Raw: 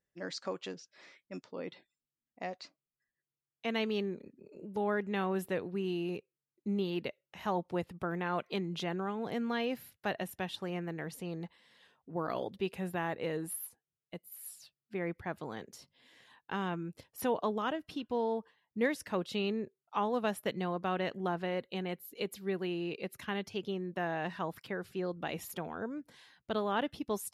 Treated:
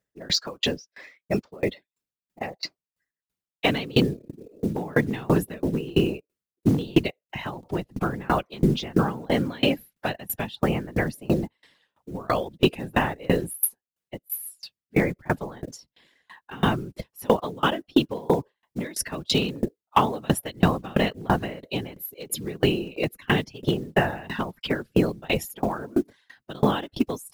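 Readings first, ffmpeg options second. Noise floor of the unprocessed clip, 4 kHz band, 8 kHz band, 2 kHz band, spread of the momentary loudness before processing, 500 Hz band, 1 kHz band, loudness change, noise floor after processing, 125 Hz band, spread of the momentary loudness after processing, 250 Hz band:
under -85 dBFS, +13.5 dB, +13.0 dB, +10.0 dB, 12 LU, +8.5 dB, +9.0 dB, +10.5 dB, under -85 dBFS, +14.5 dB, 13 LU, +11.5 dB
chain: -filter_complex "[0:a]afftdn=nr=13:nf=-51,acrossover=split=180|3000[s0][s1][s2];[s1]acompressor=threshold=0.00891:ratio=3[s3];[s0][s3][s2]amix=inputs=3:normalize=0,acrusher=bits=7:mode=log:mix=0:aa=0.000001,apsyclip=31.6,afftfilt=real='hypot(re,im)*cos(2*PI*random(0))':imag='hypot(re,im)*sin(2*PI*random(1))':win_size=512:overlap=0.75,volume=2.24,asoftclip=hard,volume=0.447,aeval=exprs='val(0)*pow(10,-28*if(lt(mod(3*n/s,1),2*abs(3)/1000),1-mod(3*n/s,1)/(2*abs(3)/1000),(mod(3*n/s,1)-2*abs(3)/1000)/(1-2*abs(3)/1000))/20)':c=same"

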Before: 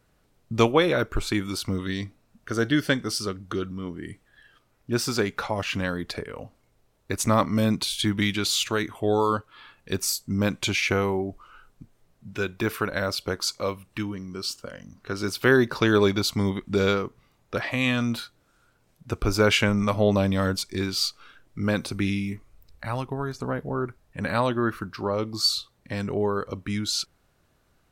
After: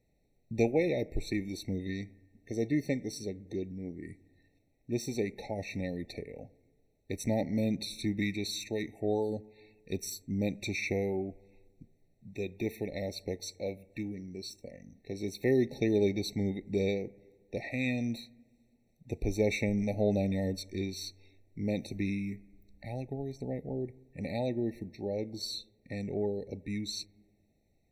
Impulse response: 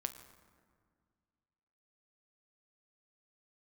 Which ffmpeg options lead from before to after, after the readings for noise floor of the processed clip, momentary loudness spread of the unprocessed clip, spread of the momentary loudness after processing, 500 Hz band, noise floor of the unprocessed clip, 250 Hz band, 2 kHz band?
-71 dBFS, 13 LU, 13 LU, -7.0 dB, -66 dBFS, -6.5 dB, -13.5 dB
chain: -filter_complex "[0:a]equalizer=f=100:t=o:w=0.67:g=-3,equalizer=f=1000:t=o:w=0.67:g=-8,equalizer=f=10000:t=o:w=0.67:g=-4,asplit=2[s0][s1];[1:a]atrim=start_sample=2205,asetrate=61740,aresample=44100,lowpass=2100[s2];[s1][s2]afir=irnorm=-1:irlink=0,volume=0.501[s3];[s0][s3]amix=inputs=2:normalize=0,afftfilt=real='re*eq(mod(floor(b*sr/1024/900),2),0)':imag='im*eq(mod(floor(b*sr/1024/900),2),0)':win_size=1024:overlap=0.75,volume=0.376"

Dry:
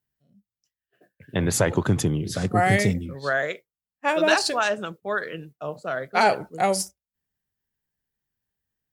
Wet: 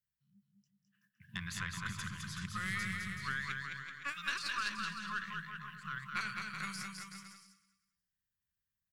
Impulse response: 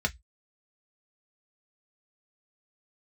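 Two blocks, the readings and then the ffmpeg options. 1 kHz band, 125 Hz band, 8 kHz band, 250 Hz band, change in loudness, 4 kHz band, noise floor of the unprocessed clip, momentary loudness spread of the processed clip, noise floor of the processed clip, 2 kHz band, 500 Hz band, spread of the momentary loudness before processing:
-17.5 dB, -18.5 dB, -16.5 dB, -19.5 dB, -16.0 dB, -11.5 dB, under -85 dBFS, 10 LU, under -85 dBFS, -10.5 dB, -39.0 dB, 12 LU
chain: -filter_complex "[0:a]acrossover=split=450|940|4300[s0][s1][s2][s3];[s0]acompressor=threshold=0.0178:ratio=4[s4];[s1]acompressor=threshold=0.0158:ratio=4[s5];[s2]acompressor=threshold=0.0447:ratio=4[s6];[s3]acompressor=threshold=0.00631:ratio=4[s7];[s4][s5][s6][s7]amix=inputs=4:normalize=0,asplit=2[s8][s9];[s9]aecho=0:1:190|380|570:0.158|0.0586|0.0217[s10];[s8][s10]amix=inputs=2:normalize=0,afftfilt=real='re*(1-between(b*sr/4096,220,990))':imag='im*(1-between(b*sr/4096,220,990))':win_size=4096:overlap=0.75,aeval=exprs='0.2*(cos(1*acos(clip(val(0)/0.2,-1,1)))-cos(1*PI/2))+0.0178*(cos(2*acos(clip(val(0)/0.2,-1,1)))-cos(2*PI/2))+0.0251*(cos(4*acos(clip(val(0)/0.2,-1,1)))-cos(4*PI/2))':c=same,bandreject=f=50:t=h:w=6,bandreject=f=100:t=h:w=6,bandreject=f=150:t=h:w=6,asplit=2[s11][s12];[s12]aecho=0:1:210|378|512.4|619.9|705.9:0.631|0.398|0.251|0.158|0.1[s13];[s11][s13]amix=inputs=2:normalize=0,volume=0.355"

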